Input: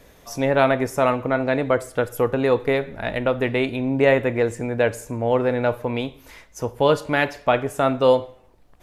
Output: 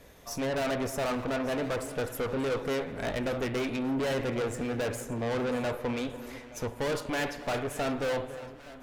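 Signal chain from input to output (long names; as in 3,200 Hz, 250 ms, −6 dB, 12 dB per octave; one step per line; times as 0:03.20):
tube saturation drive 28 dB, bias 0.65
delay that swaps between a low-pass and a high-pass 290 ms, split 1,300 Hz, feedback 73%, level −13 dB
spring reverb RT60 3.2 s, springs 52 ms, chirp 70 ms, DRR 16.5 dB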